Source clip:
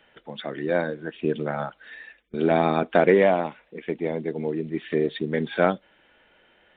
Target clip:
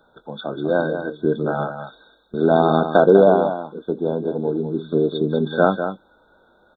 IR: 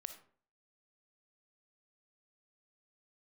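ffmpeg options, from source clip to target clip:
-filter_complex "[0:a]asplit=2[a][b];[b]adelay=20,volume=-13dB[c];[a][c]amix=inputs=2:normalize=0,aecho=1:1:197:0.376,afftfilt=real='re*(1-between(b*sr/4096,1600,3400))':imag='im*(1-between(b*sr/4096,1600,3400))':win_size=4096:overlap=0.75,volume=4.5dB"

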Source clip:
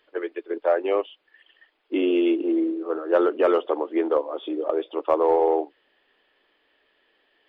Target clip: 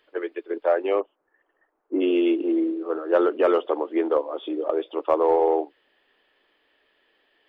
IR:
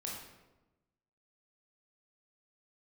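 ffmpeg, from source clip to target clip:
-filter_complex "[0:a]asplit=3[a][b][c];[a]afade=t=out:st=0.99:d=0.02[d];[b]lowpass=f=1.3k:w=0.5412,lowpass=f=1.3k:w=1.3066,afade=t=in:st=0.99:d=0.02,afade=t=out:st=2:d=0.02[e];[c]afade=t=in:st=2:d=0.02[f];[d][e][f]amix=inputs=3:normalize=0"

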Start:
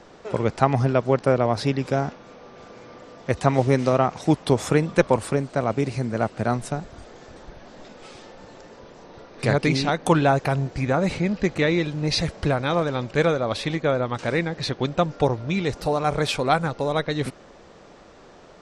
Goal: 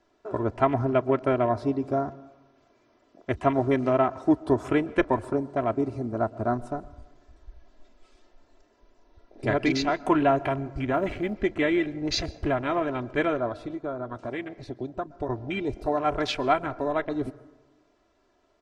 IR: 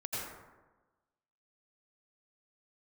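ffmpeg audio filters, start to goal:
-filter_complex "[0:a]aecho=1:1:3:0.75,asplit=3[a][b][c];[a]afade=t=out:st=10.92:d=0.02[d];[b]acrusher=bits=7:mode=log:mix=0:aa=0.000001,afade=t=in:st=10.92:d=0.02,afade=t=out:st=11.33:d=0.02[e];[c]afade=t=in:st=11.33:d=0.02[f];[d][e][f]amix=inputs=3:normalize=0,asettb=1/sr,asplit=3[g][h][i];[g]atrim=end=13.484[j];[h]atrim=start=13.48:end=15.29,asetpts=PTS-STARTPTS,afade=t=in:d=0.004:c=qsin,afade=t=out:st=1.806:d=0.004:c=qsin,acompressor=threshold=-29dB:ratio=2[k];[i]atrim=start=15.286[l];[j][k]acrossfade=d=0.004:c1=hsin:c2=qsin[m];[m][l]acrossfade=d=0.004:c1=qsin:c2=hsin,afwtdn=0.0316,asplit=2[n][o];[1:a]atrim=start_sample=2205,adelay=33[p];[o][p]afir=irnorm=-1:irlink=0,volume=-22.5dB[q];[n][q]amix=inputs=2:normalize=0,volume=-4.5dB"

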